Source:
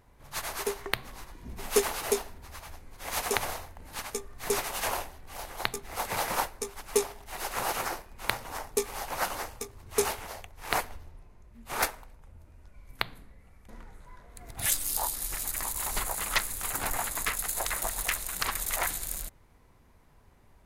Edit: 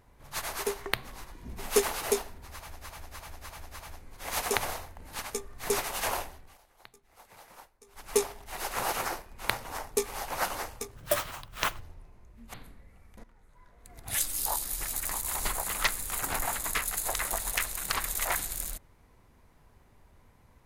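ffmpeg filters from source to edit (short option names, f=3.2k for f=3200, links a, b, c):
-filter_complex "[0:a]asplit=11[a][b][c][d][e][f][g][h][i][j][k];[a]atrim=end=2.812[l];[b]atrim=start=2.508:end=2.812[m];[c]atrim=start=2.508:end=2.812[n];[d]atrim=start=2.508:end=2.812[o];[e]atrim=start=2.508:end=5.38,asetpts=PTS-STARTPTS,afade=t=out:st=2.622:d=0.25:silence=0.0749894[p];[f]atrim=start=5.38:end=6.66,asetpts=PTS-STARTPTS,volume=-22.5dB[q];[g]atrim=start=6.66:end=9.764,asetpts=PTS-STARTPTS,afade=t=in:d=0.25:silence=0.0749894[r];[h]atrim=start=9.76:end=10.98,asetpts=PTS-STARTPTS,asetrate=63504,aresample=44100,atrim=end_sample=37362,asetpts=PTS-STARTPTS[s];[i]atrim=start=10.976:end=11.712[t];[j]atrim=start=13.048:end=13.75,asetpts=PTS-STARTPTS,afade=t=out:st=0.698:d=0.004:c=hsin:silence=0.16788[u];[k]atrim=start=13.75,asetpts=PTS-STARTPTS,afade=t=in:d=1.29:silence=0.16788[v];[l][m]acrossfade=d=0.004:c1=hsin:c2=hsin[w];[w][n]acrossfade=d=0.004:c1=hsin:c2=hsin[x];[x][o]acrossfade=d=0.004:c1=hsin:c2=hsin[y];[p][q][r]concat=n=3:v=0:a=1[z];[y][z]acrossfade=d=0.004:c1=hsin:c2=hsin[aa];[aa][s]acrossfade=d=0.004:c1=hsin:c2=hsin[ab];[ab][t]acrossfade=d=0.004:c1=hsin:c2=hsin[ac];[u][v]concat=n=2:v=0:a=1[ad];[ac][ad]acrossfade=d=0.004:c1=hsin:c2=hsin"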